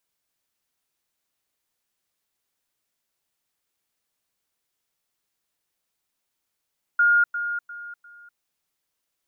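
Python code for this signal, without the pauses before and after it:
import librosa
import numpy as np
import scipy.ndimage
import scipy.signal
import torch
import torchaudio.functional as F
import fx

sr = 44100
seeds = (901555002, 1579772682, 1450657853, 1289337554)

y = fx.level_ladder(sr, hz=1420.0, from_db=-14.5, step_db=-10.0, steps=4, dwell_s=0.25, gap_s=0.1)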